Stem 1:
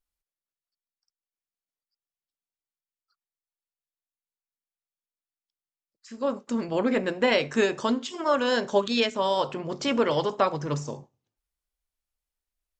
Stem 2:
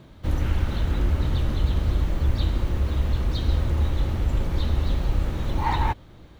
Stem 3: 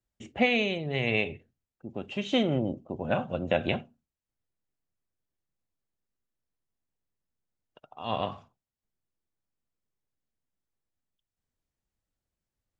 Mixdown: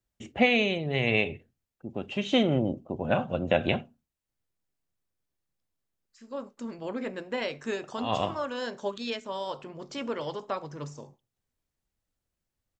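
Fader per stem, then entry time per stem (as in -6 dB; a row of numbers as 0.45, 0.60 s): -9.5 dB, off, +2.0 dB; 0.10 s, off, 0.00 s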